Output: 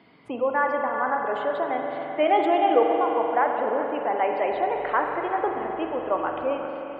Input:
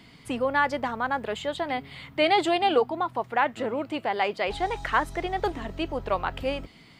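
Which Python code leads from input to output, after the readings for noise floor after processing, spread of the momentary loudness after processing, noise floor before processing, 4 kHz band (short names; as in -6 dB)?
-36 dBFS, 8 LU, -52 dBFS, -9.0 dB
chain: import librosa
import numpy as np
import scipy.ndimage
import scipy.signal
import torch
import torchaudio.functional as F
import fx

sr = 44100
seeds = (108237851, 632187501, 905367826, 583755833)

p1 = scipy.signal.sosfilt(scipy.signal.butter(2, 530.0, 'highpass', fs=sr, output='sos'), x)
p2 = fx.tilt_eq(p1, sr, slope=-4.5)
p3 = p2 + fx.echo_single(p2, sr, ms=381, db=-12.5, dry=0)
p4 = fx.spec_gate(p3, sr, threshold_db=-30, keep='strong')
p5 = fx.high_shelf(p4, sr, hz=6000.0, db=-12.0)
p6 = fx.rev_spring(p5, sr, rt60_s=3.8, pass_ms=(43,), chirp_ms=65, drr_db=2.0)
y = p6 * librosa.db_to_amplitude(1.0)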